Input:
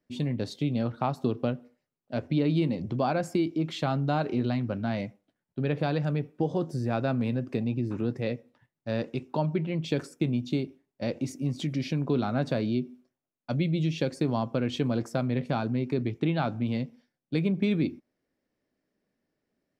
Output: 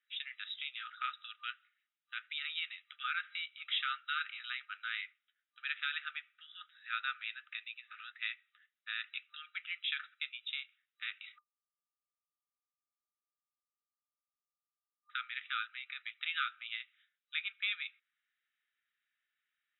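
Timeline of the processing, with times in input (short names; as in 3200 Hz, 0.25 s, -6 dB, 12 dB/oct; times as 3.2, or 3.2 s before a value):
11.38–15.1 bleep 971 Hz -20 dBFS
whole clip: FFT band-pass 1200–3900 Hz; tilt +2.5 dB/oct; gain +1 dB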